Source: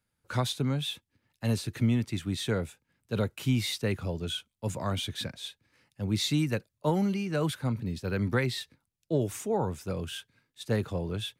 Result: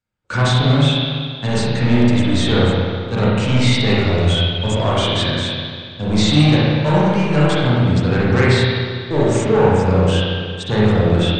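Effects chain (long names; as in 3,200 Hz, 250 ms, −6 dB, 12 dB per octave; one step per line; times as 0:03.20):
leveller curve on the samples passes 3
linear-phase brick-wall low-pass 8,700 Hz
convolution reverb RT60 2.0 s, pre-delay 33 ms, DRR −7.5 dB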